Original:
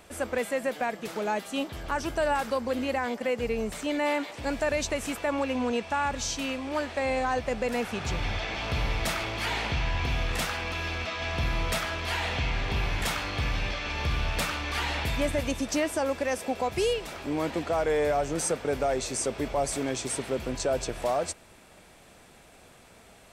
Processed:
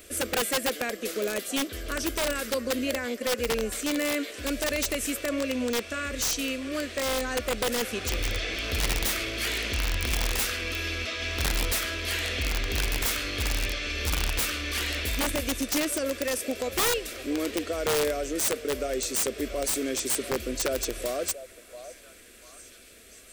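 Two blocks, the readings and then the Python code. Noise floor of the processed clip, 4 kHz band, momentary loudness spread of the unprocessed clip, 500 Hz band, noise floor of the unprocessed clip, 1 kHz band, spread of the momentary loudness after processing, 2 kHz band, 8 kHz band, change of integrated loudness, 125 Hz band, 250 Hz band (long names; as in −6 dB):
−50 dBFS, +4.5 dB, 4 LU, −1.0 dB, −54 dBFS, −5.0 dB, 5 LU, +1.0 dB, +6.0 dB, +1.0 dB, −2.5 dB, +0.5 dB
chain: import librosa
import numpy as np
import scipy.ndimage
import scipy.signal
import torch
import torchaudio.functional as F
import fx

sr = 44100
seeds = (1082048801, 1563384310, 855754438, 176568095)

y = fx.high_shelf(x, sr, hz=9000.0, db=11.5)
y = fx.rider(y, sr, range_db=10, speed_s=2.0)
y = fx.fixed_phaser(y, sr, hz=360.0, stages=4)
y = fx.echo_stepped(y, sr, ms=689, hz=760.0, octaves=0.7, feedback_pct=70, wet_db=-11)
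y = (np.mod(10.0 ** (22.0 / 20.0) * y + 1.0, 2.0) - 1.0) / 10.0 ** (22.0 / 20.0)
y = y * librosa.db_to_amplitude(2.5)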